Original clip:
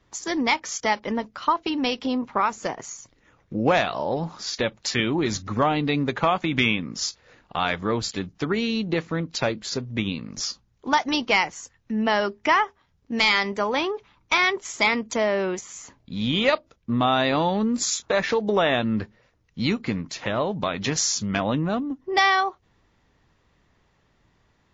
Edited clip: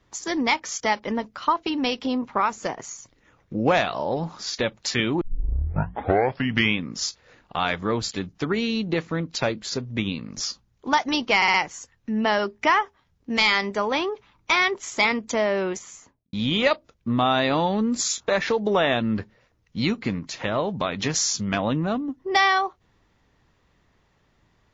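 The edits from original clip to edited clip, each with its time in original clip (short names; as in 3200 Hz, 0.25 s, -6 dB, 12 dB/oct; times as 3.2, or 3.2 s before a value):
5.21 tape start 1.54 s
11.36 stutter 0.06 s, 4 plays
15.62–16.15 studio fade out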